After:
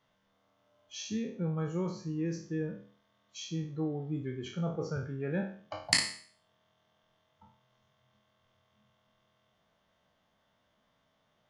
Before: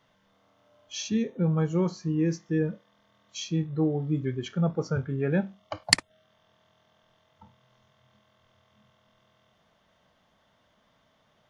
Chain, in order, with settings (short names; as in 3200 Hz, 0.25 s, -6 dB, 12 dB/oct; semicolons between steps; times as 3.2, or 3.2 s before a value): spectral trails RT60 0.49 s; gain -8.5 dB